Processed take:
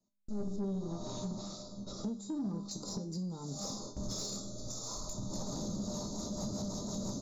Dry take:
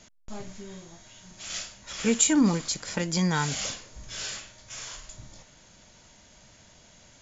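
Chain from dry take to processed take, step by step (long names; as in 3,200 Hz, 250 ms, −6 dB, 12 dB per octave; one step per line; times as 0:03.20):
camcorder AGC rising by 25 dB per second
Chebyshev band-stop filter 1,300–3,700 Hz, order 5
mains-hum notches 50/100/150/200/250/300/350/400 Hz
noise gate with hold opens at −26 dBFS
parametric band 250 Hz +13 dB 2.1 octaves
downward compressor 4 to 1, threshold −25 dBFS, peak gain reduction 17 dB
rotating-speaker cabinet horn 0.7 Hz, later 6 Hz, at 0:05.50
tuned comb filter 200 Hz, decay 0.38 s, harmonics all, mix 80%
soft clipping −32 dBFS, distortion −16 dB
0:00.56–0:02.71: high-frequency loss of the air 120 metres
single-tap delay 468 ms −20 dB
level +2 dB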